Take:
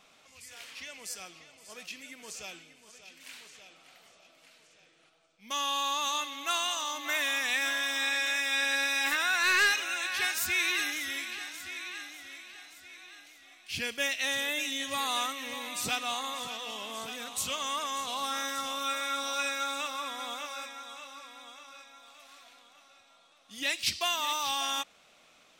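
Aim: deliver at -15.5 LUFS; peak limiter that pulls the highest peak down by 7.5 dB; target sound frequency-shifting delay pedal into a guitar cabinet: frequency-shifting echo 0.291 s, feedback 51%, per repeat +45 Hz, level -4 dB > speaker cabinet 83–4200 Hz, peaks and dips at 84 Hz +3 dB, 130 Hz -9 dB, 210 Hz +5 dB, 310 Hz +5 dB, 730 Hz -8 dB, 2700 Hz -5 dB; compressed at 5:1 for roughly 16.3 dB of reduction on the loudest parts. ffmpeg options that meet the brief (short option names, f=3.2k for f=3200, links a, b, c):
-filter_complex "[0:a]acompressor=threshold=-41dB:ratio=5,alimiter=level_in=11dB:limit=-24dB:level=0:latency=1,volume=-11dB,asplit=8[a][b][c][d][e][f][g][h];[b]adelay=291,afreqshift=45,volume=-4dB[i];[c]adelay=582,afreqshift=90,volume=-9.8dB[j];[d]adelay=873,afreqshift=135,volume=-15.7dB[k];[e]adelay=1164,afreqshift=180,volume=-21.5dB[l];[f]adelay=1455,afreqshift=225,volume=-27.4dB[m];[g]adelay=1746,afreqshift=270,volume=-33.2dB[n];[h]adelay=2037,afreqshift=315,volume=-39.1dB[o];[a][i][j][k][l][m][n][o]amix=inputs=8:normalize=0,highpass=83,equalizer=f=84:t=q:w=4:g=3,equalizer=f=130:t=q:w=4:g=-9,equalizer=f=210:t=q:w=4:g=5,equalizer=f=310:t=q:w=4:g=5,equalizer=f=730:t=q:w=4:g=-8,equalizer=f=2.7k:t=q:w=4:g=-5,lowpass=f=4.2k:w=0.5412,lowpass=f=4.2k:w=1.3066,volume=29dB"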